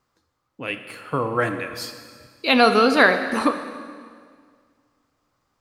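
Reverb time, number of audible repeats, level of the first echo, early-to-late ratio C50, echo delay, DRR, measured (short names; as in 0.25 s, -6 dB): 1.9 s, none, none, 9.0 dB, none, 7.5 dB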